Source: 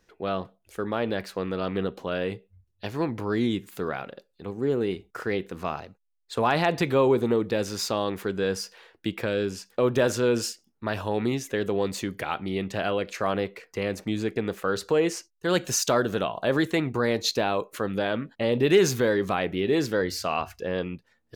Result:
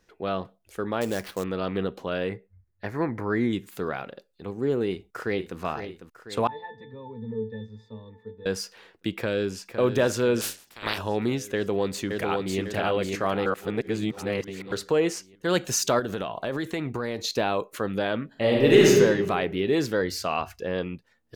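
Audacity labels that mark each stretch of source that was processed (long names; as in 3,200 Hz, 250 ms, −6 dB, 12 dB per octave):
1.010000	1.440000	sample-rate reduction 7,500 Hz, jitter 20%
2.290000	3.530000	high shelf with overshoot 2,400 Hz −6.5 dB, Q 3
4.870000	5.590000	delay throw 500 ms, feedback 60%, level −10 dB
6.470000	8.460000	resonances in every octave A, decay 0.26 s
9.170000	9.670000	delay throw 510 ms, feedback 65%, level −9 dB
10.400000	10.970000	ceiling on every frequency bin ceiling under each frame's peak by 26 dB
11.550000	12.600000	delay throw 550 ms, feedback 50%, level −3 dB
13.460000	14.720000	reverse
15.990000	17.300000	downward compressor, threshold −25 dBFS
18.270000	18.890000	thrown reverb, RT60 1.4 s, DRR −3 dB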